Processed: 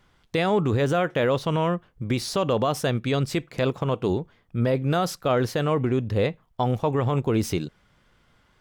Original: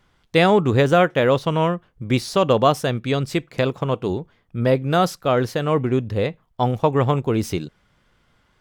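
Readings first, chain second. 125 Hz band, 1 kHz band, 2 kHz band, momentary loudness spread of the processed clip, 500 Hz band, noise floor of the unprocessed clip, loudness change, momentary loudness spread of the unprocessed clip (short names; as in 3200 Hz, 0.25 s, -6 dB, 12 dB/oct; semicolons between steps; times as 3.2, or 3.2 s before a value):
-3.0 dB, -6.0 dB, -5.5 dB, 6 LU, -5.0 dB, -63 dBFS, -4.5 dB, 10 LU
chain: limiter -13 dBFS, peak gain reduction 10 dB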